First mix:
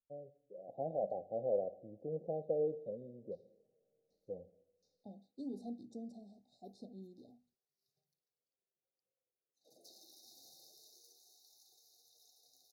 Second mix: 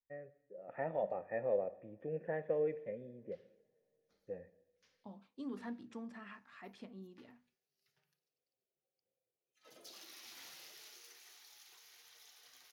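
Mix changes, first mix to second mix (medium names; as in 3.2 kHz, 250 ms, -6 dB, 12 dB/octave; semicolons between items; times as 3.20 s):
background +5.0 dB; master: remove brick-wall FIR band-stop 830–3600 Hz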